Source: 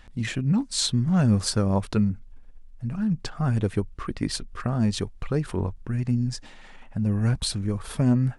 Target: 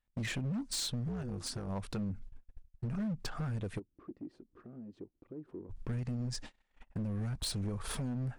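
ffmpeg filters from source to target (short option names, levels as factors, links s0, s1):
-filter_complex "[0:a]agate=range=0.0178:threshold=0.01:ratio=16:detection=peak,alimiter=limit=0.119:level=0:latency=1:release=296,acompressor=threshold=0.0316:ratio=20,asplit=3[s0][s1][s2];[s0]afade=t=out:st=1.07:d=0.02[s3];[s1]tremolo=f=250:d=0.857,afade=t=in:st=1.07:d=0.02,afade=t=out:st=1.68:d=0.02[s4];[s2]afade=t=in:st=1.68:d=0.02[s5];[s3][s4][s5]amix=inputs=3:normalize=0,asoftclip=type=hard:threshold=0.0251,asplit=3[s6][s7][s8];[s6]afade=t=out:st=3.78:d=0.02[s9];[s7]bandpass=f=320:t=q:w=3.7:csg=0,afade=t=in:st=3.78:d=0.02,afade=t=out:st=5.69:d=0.02[s10];[s8]afade=t=in:st=5.69:d=0.02[s11];[s9][s10][s11]amix=inputs=3:normalize=0"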